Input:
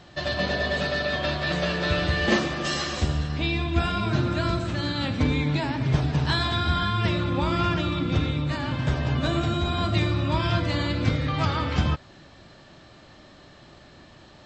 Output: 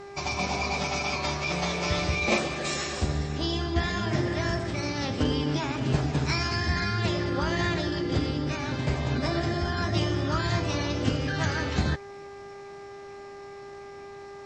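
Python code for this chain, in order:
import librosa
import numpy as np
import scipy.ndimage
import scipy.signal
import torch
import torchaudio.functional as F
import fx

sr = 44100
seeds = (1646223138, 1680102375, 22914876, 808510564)

y = fx.formant_shift(x, sr, semitones=5)
y = fx.dmg_buzz(y, sr, base_hz=400.0, harmonics=5, level_db=-40.0, tilt_db=-7, odd_only=False)
y = F.gain(torch.from_numpy(y), -3.0).numpy()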